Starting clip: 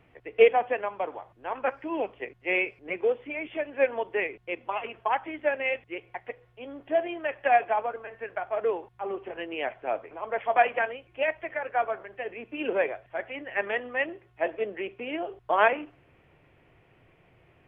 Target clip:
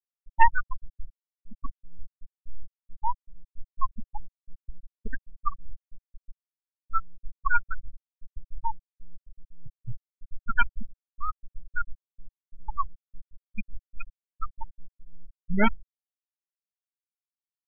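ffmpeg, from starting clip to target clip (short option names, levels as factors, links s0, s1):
-af "adynamicsmooth=sensitivity=7:basefreq=820,aeval=exprs='abs(val(0))':c=same,afftfilt=real='re*gte(hypot(re,im),0.251)':imag='im*gte(hypot(re,im),0.251)':win_size=1024:overlap=0.75,volume=1.58"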